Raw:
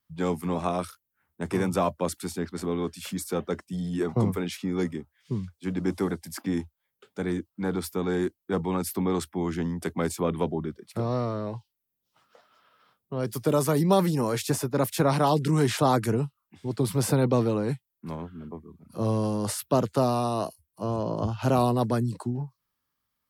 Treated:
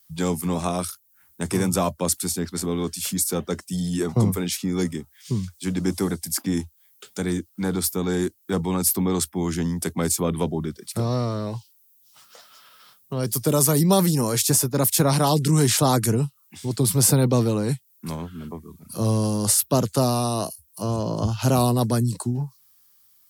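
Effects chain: tone controls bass +5 dB, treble +14 dB; tape noise reduction on one side only encoder only; trim +1 dB

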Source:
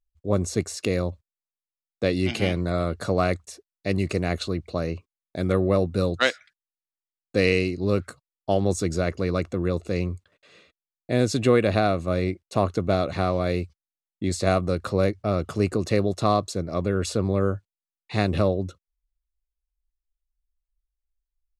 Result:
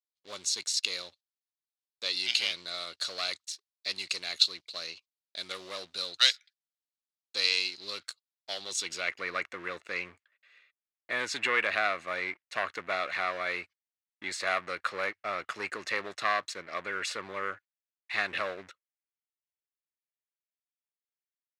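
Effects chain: waveshaping leveller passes 2; band-pass sweep 4.1 kHz -> 1.9 kHz, 8.63–9.24 s; tilt EQ +2 dB/octave

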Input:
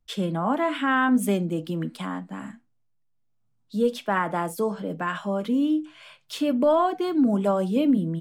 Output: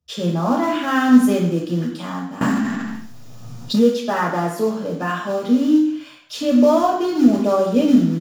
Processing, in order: feedback delay 98 ms, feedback 35%, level -20 dB; in parallel at -8 dB: companded quantiser 4-bit; on the sum: reverberation RT60 0.65 s, pre-delay 3 ms, DRR -3.5 dB; 2.41–3.87 s: level flattener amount 70%; trim -5 dB

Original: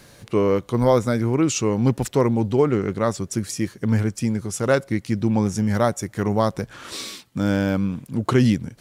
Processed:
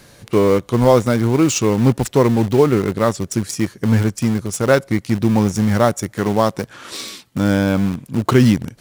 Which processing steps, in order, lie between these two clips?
in parallel at -10 dB: bit crusher 4-bit; 6.13–7.03 s: on the sum: high-pass 140 Hz 6 dB/octave; trim +2.5 dB

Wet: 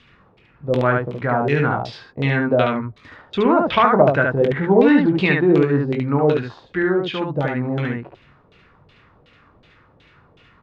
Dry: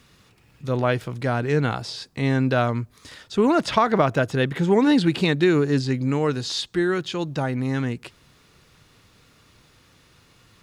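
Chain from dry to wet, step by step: LFO low-pass saw down 2.7 Hz 470–3400 Hz; early reflections 21 ms -7.5 dB, 72 ms -3 dB

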